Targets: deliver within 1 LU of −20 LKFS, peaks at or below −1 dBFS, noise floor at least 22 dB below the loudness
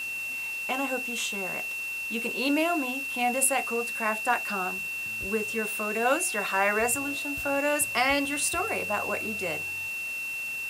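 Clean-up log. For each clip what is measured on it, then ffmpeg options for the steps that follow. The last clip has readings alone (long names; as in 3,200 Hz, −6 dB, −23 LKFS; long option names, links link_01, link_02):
interfering tone 2,700 Hz; level of the tone −31 dBFS; background noise floor −34 dBFS; target noise floor −49 dBFS; integrated loudness −27.0 LKFS; sample peak −10.0 dBFS; target loudness −20.0 LKFS
→ -af "bandreject=frequency=2700:width=30"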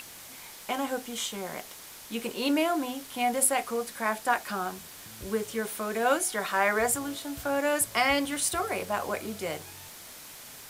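interfering tone none found; background noise floor −46 dBFS; target noise floor −51 dBFS
→ -af "afftdn=noise_reduction=6:noise_floor=-46"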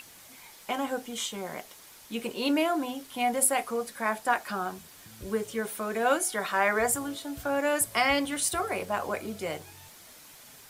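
background noise floor −52 dBFS; integrated loudness −29.0 LKFS; sample peak −10.5 dBFS; target loudness −20.0 LKFS
→ -af "volume=9dB"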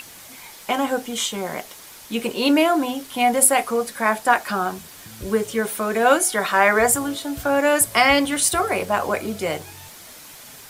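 integrated loudness −20.0 LKFS; sample peak −1.5 dBFS; background noise floor −43 dBFS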